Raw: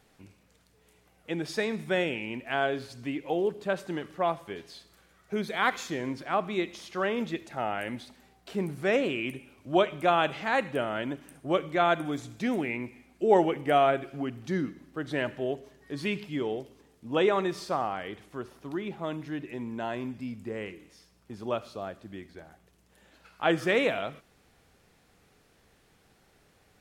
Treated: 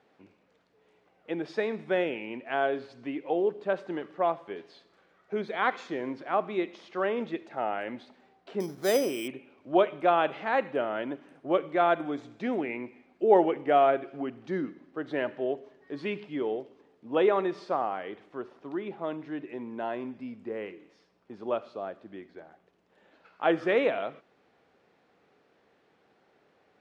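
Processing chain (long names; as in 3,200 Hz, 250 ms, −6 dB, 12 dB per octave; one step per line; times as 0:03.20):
band-pass filter 390–4,600 Hz
spectral tilt −3 dB per octave
0:08.60–0:09.28: bad sample-rate conversion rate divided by 8×, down filtered, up hold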